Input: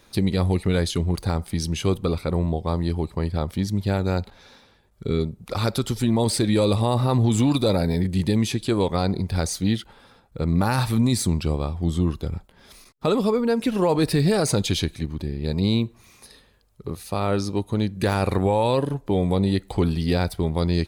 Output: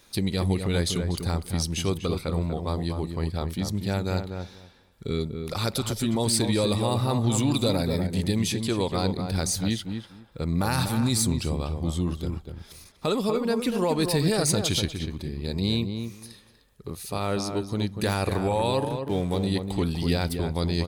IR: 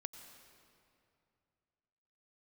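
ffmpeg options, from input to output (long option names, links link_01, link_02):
-filter_complex "[0:a]asettb=1/sr,asplit=3[link_01][link_02][link_03];[link_01]atrim=end=18.874[link_04];[link_02]atrim=start=18.87:end=19.47,asetpts=PTS-STARTPTS,afade=type=in:duration=0.004:curve=qsin,afade=type=out:start_time=0.596:duration=0.004:curve=qsin,aeval=exprs='sgn(val(0))*max(abs(val(0))-0.00794,0)':channel_layout=same[link_05];[link_03]atrim=start=19.466[link_06];[link_04][link_05]acrossfade=duration=0.004:curve1=hsin:curve2=qsin[link_07];[link_07][link_06]acrossfade=duration=0.004:curve1=qsin:curve2=hsin,highshelf=frequency=2700:gain=8,asplit=2[link_08][link_09];[link_09]adelay=243,lowpass=frequency=1700:poles=1,volume=-6dB,asplit=2[link_10][link_11];[link_11]adelay=243,lowpass=frequency=1700:poles=1,volume=0.17,asplit=2[link_12][link_13];[link_13]adelay=243,lowpass=frequency=1700:poles=1,volume=0.17[link_14];[link_08][link_10][link_12][link_14]amix=inputs=4:normalize=0,volume=-5dB"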